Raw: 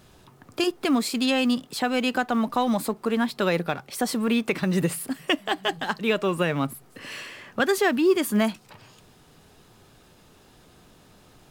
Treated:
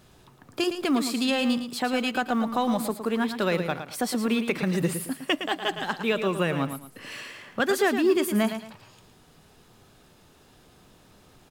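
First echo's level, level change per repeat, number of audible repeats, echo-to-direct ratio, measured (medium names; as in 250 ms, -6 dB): -9.0 dB, -10.5 dB, 2, -8.5 dB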